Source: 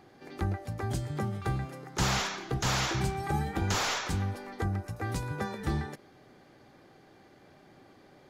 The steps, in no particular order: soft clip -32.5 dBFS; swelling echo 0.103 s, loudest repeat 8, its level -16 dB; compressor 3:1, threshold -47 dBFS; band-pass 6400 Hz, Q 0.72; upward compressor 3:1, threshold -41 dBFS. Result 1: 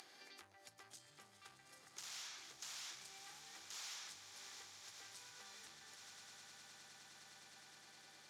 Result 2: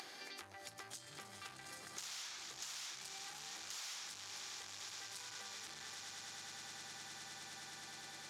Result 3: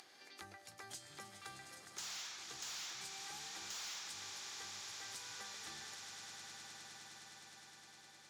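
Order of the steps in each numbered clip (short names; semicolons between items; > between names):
soft clip > swelling echo > compressor > upward compressor > band-pass; swelling echo > soft clip > compressor > band-pass > upward compressor; swelling echo > upward compressor > band-pass > soft clip > compressor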